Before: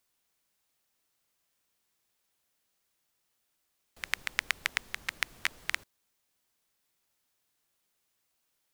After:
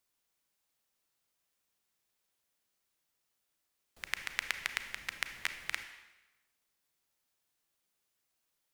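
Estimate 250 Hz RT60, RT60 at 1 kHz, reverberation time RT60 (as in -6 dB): 1.0 s, 1.1 s, 1.1 s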